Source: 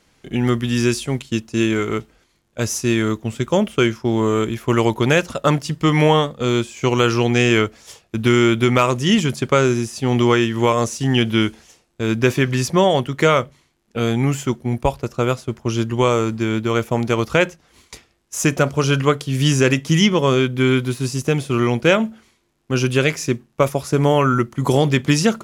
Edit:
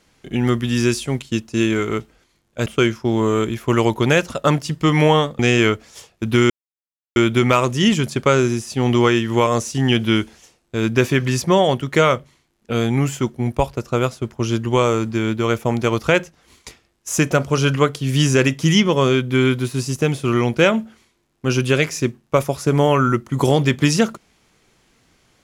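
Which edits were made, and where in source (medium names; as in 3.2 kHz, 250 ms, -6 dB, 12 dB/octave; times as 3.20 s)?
2.66–3.66 s: delete
6.39–7.31 s: delete
8.42 s: insert silence 0.66 s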